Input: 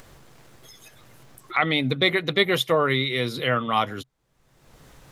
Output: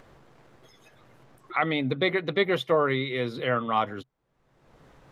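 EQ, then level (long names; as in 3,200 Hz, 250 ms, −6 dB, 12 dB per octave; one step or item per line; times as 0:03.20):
low-pass filter 1,300 Hz 6 dB per octave
low-shelf EQ 170 Hz −7.5 dB
0.0 dB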